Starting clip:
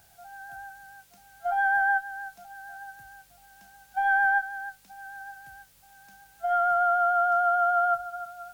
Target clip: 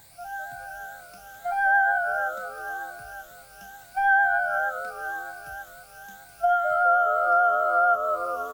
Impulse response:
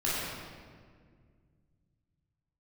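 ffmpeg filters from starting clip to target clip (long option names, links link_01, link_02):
-filter_complex "[0:a]afftfilt=real='re*pow(10,12/40*sin(2*PI*(1*log(max(b,1)*sr/1024/100)/log(2)-(2.1)*(pts-256)/sr)))':imag='im*pow(10,12/40*sin(2*PI*(1*log(max(b,1)*sr/1024/100)/log(2)-(2.1)*(pts-256)/sr)))':win_size=1024:overlap=0.75,asplit=6[link_01][link_02][link_03][link_04][link_05][link_06];[link_02]adelay=206,afreqshift=-90,volume=-9.5dB[link_07];[link_03]adelay=412,afreqshift=-180,volume=-17dB[link_08];[link_04]adelay=618,afreqshift=-270,volume=-24.6dB[link_09];[link_05]adelay=824,afreqshift=-360,volume=-32.1dB[link_10];[link_06]adelay=1030,afreqshift=-450,volume=-39.6dB[link_11];[link_01][link_07][link_08][link_09][link_10][link_11]amix=inputs=6:normalize=0,acompressor=threshold=-27dB:ratio=2,volume=5dB"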